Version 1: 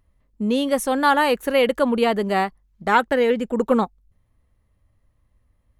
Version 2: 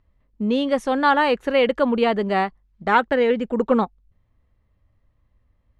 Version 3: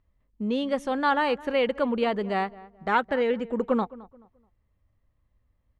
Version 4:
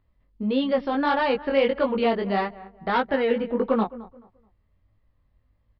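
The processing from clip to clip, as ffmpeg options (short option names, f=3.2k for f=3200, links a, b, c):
-af "lowpass=4.3k"
-filter_complex "[0:a]asplit=2[a][b];[b]adelay=215,lowpass=f=1.6k:p=1,volume=-19dB,asplit=2[c][d];[d]adelay=215,lowpass=f=1.6k:p=1,volume=0.31,asplit=2[e][f];[f]adelay=215,lowpass=f=1.6k:p=1,volume=0.31[g];[a][c][e][g]amix=inputs=4:normalize=0,volume=-6dB"
-filter_complex "[0:a]flanger=delay=18.5:depth=3.7:speed=1.6,acrossover=split=720[a][b];[b]asoftclip=type=tanh:threshold=-28dB[c];[a][c]amix=inputs=2:normalize=0,aresample=11025,aresample=44100,volume=6.5dB"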